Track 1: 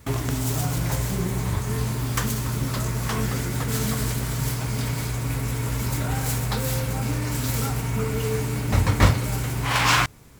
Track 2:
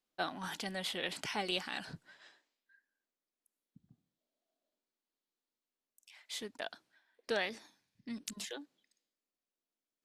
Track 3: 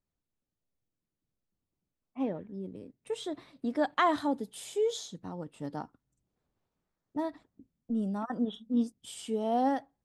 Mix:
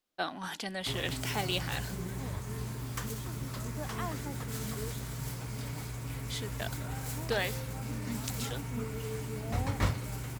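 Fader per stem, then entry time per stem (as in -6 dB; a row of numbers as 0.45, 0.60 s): -12.5, +2.5, -14.0 dB; 0.80, 0.00, 0.00 s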